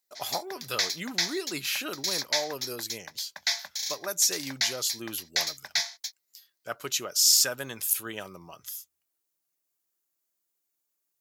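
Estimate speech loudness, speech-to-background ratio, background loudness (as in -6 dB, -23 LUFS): -28.5 LUFS, 2.5 dB, -31.0 LUFS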